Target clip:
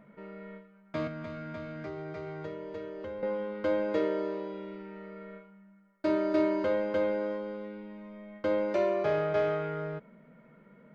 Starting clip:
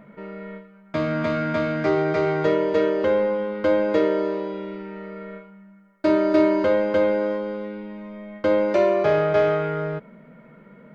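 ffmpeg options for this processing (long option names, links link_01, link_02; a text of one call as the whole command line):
ffmpeg -i in.wav -filter_complex "[0:a]asettb=1/sr,asplit=3[link_01][link_02][link_03];[link_01]atrim=end=1.074[link_04];[link_02]atrim=start=1.07:end=3.23,asetpts=PTS-STARTPTS,afade=type=in:duration=0.004:curve=qsin,afade=type=out:start_time=2.156:duration=0.004:curve=qsin,acrossover=split=130[link_05][link_06];[link_06]acompressor=threshold=-34dB:ratio=2.5[link_07];[link_05][link_07]amix=inputs=2:normalize=0[link_08];[link_03]atrim=start=3.226[link_09];[link_04][link_08]acrossfade=duration=0.004:curve1=hsin:curve2=qsin[link_10];[link_10][link_09]acrossfade=duration=0.004:curve1=qsin:curve2=hsin,volume=-9dB" out.wav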